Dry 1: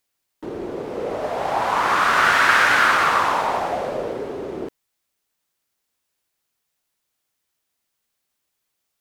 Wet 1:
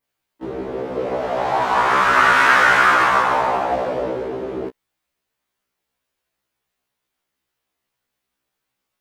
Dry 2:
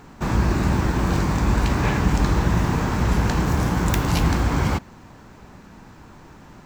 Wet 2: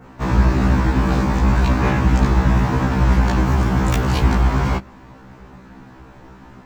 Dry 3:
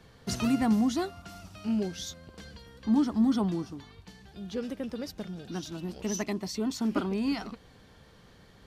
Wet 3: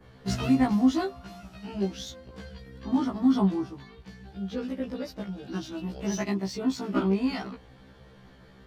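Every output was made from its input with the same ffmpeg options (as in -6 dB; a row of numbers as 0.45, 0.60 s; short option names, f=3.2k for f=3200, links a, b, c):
-filter_complex "[0:a]adynamicequalizer=threshold=0.0178:dfrequency=4200:dqfactor=0.84:tfrequency=4200:tqfactor=0.84:attack=5:release=100:ratio=0.375:range=2.5:mode=cutabove:tftype=bell,asplit=2[a][b];[b]adynamicsmooth=sensitivity=5.5:basefreq=4.4k,volume=3dB[c];[a][c]amix=inputs=2:normalize=0,afftfilt=real='re*1.73*eq(mod(b,3),0)':imag='im*1.73*eq(mod(b,3),0)':win_size=2048:overlap=0.75,volume=-2dB"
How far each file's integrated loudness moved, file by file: +2.0, +3.5, +2.5 LU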